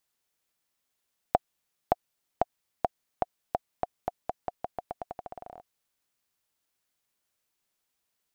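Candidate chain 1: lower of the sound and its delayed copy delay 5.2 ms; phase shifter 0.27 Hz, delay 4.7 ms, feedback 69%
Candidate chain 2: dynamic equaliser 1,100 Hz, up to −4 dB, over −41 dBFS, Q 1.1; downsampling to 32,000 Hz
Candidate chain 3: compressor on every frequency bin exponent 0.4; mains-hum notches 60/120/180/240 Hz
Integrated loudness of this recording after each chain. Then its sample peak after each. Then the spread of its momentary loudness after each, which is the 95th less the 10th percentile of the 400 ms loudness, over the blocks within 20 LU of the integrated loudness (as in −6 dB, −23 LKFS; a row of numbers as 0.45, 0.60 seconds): −37.0, −38.0, −32.5 LKFS; −8.5, −7.0, −6.0 dBFS; 9, 10, 19 LU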